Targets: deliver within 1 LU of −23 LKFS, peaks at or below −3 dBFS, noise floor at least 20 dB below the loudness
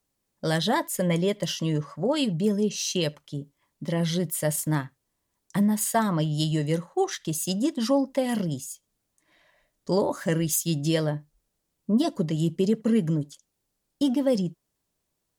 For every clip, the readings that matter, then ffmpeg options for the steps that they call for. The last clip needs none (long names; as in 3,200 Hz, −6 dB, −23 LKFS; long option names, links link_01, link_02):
integrated loudness −26.0 LKFS; sample peak −13.0 dBFS; target loudness −23.0 LKFS
→ -af "volume=3dB"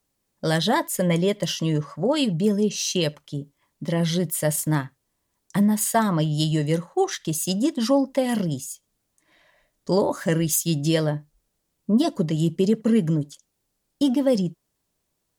integrated loudness −23.0 LKFS; sample peak −10.0 dBFS; background noise floor −76 dBFS